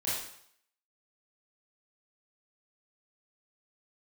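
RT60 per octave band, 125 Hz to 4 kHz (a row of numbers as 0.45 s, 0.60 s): 0.60 s, 0.60 s, 0.65 s, 0.70 s, 0.65 s, 0.65 s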